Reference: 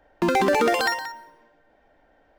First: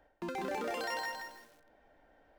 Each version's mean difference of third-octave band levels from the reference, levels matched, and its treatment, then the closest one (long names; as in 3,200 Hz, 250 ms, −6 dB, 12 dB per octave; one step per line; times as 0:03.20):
8.0 dB: reversed playback
downward compressor 12 to 1, threshold −31 dBFS, peak gain reduction 15 dB
reversed playback
feedback echo at a low word length 161 ms, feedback 35%, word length 9 bits, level −3.5 dB
level −4.5 dB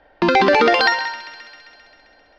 6.0 dB: drawn EQ curve 150 Hz 0 dB, 4,800 Hz +7 dB, 8,400 Hz −22 dB
delay with a high-pass on its return 132 ms, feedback 71%, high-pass 1,600 Hz, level −15 dB
level +3 dB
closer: second